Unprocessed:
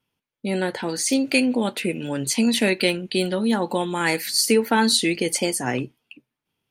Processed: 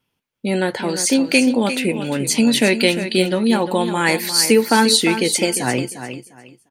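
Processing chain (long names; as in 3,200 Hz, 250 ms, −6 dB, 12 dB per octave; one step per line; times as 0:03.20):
repeating echo 351 ms, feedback 22%, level −10.5 dB
level +4.5 dB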